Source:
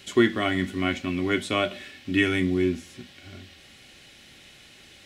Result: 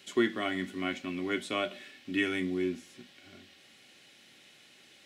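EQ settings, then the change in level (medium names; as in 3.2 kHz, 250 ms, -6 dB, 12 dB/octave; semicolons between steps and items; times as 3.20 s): high-pass 180 Hz 12 dB/octave; -7.0 dB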